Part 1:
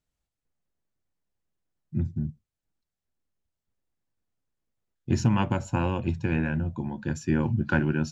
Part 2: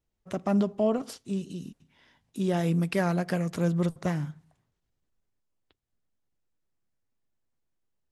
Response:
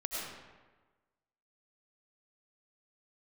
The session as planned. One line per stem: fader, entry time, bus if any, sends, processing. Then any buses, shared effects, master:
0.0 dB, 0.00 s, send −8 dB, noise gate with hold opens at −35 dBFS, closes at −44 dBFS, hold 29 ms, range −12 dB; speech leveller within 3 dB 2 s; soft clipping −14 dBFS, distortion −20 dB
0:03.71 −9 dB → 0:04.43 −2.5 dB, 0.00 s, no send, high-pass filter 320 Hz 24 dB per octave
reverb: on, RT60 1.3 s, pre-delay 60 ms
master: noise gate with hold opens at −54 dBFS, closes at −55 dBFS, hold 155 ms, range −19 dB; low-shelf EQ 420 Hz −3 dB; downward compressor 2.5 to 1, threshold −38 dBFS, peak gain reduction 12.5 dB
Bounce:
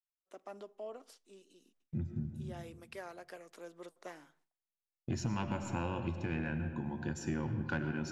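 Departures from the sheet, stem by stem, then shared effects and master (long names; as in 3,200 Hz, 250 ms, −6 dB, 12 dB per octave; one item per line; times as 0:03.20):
stem 1: missing speech leveller within 3 dB 2 s
stem 2 −9.0 dB → −16.0 dB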